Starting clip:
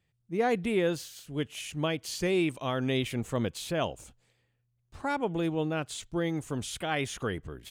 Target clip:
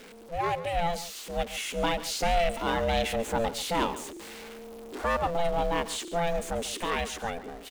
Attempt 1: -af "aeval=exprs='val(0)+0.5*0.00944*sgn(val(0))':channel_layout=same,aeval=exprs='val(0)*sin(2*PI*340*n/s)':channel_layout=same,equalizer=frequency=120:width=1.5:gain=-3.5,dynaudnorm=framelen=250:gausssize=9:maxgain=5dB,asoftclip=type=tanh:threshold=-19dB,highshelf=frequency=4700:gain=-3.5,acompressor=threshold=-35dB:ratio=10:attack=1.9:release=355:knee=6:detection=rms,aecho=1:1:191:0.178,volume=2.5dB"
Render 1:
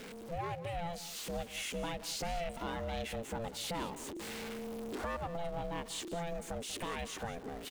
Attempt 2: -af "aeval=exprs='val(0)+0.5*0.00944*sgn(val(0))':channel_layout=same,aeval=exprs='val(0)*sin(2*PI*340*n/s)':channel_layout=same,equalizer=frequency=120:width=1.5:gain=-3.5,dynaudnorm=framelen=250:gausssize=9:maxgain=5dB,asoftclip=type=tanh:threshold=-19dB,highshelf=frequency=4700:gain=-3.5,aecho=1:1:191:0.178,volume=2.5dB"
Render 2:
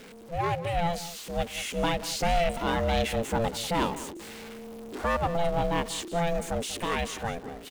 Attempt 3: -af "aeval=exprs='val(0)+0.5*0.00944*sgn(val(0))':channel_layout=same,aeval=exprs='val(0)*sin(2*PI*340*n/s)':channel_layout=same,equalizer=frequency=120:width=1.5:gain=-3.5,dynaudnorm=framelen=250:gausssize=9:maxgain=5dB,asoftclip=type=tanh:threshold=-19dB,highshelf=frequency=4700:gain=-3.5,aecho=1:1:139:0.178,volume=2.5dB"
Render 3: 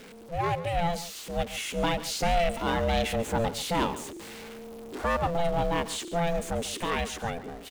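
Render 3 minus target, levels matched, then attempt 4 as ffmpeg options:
125 Hz band +4.5 dB
-af "aeval=exprs='val(0)+0.5*0.00944*sgn(val(0))':channel_layout=same,aeval=exprs='val(0)*sin(2*PI*340*n/s)':channel_layout=same,equalizer=frequency=120:width=1.5:gain=-14.5,dynaudnorm=framelen=250:gausssize=9:maxgain=5dB,asoftclip=type=tanh:threshold=-19dB,highshelf=frequency=4700:gain=-3.5,aecho=1:1:139:0.178,volume=2.5dB"

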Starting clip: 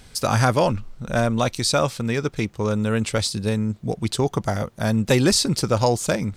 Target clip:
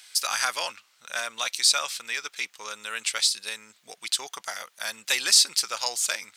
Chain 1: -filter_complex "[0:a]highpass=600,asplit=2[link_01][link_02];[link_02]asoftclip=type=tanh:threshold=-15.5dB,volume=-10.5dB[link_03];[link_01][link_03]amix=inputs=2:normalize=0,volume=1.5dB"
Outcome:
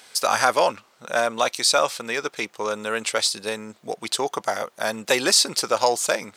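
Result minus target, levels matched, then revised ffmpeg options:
500 Hz band +15.5 dB
-filter_complex "[0:a]highpass=2000,asplit=2[link_01][link_02];[link_02]asoftclip=type=tanh:threshold=-15.5dB,volume=-10.5dB[link_03];[link_01][link_03]amix=inputs=2:normalize=0,volume=1.5dB"

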